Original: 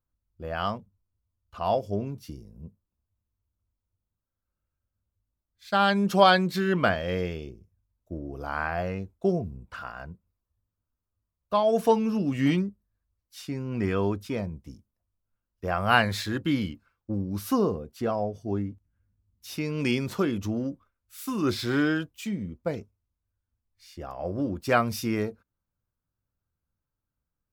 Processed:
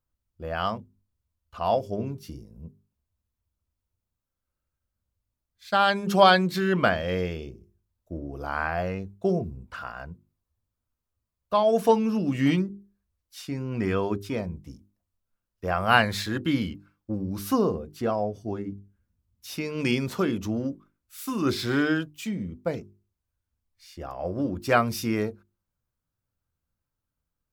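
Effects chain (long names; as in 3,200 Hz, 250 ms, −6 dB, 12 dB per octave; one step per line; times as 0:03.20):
mains-hum notches 50/100/150/200/250/300/350/400 Hz
level +1.5 dB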